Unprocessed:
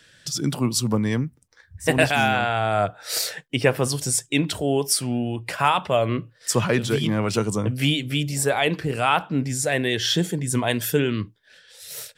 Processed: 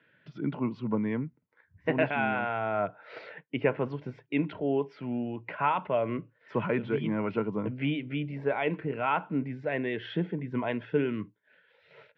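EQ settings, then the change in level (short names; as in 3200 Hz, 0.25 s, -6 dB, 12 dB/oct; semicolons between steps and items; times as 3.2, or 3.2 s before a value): air absorption 180 m; speaker cabinet 240–2100 Hz, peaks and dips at 250 Hz -3 dB, 360 Hz -5 dB, 520 Hz -6 dB, 750 Hz -9 dB, 1200 Hz -3 dB, 1700 Hz -9 dB; notch 1200 Hz, Q 7.8; 0.0 dB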